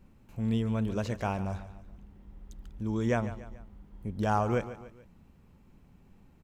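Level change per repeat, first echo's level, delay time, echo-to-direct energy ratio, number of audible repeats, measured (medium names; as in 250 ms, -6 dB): -6.5 dB, -14.0 dB, 144 ms, -13.0 dB, 3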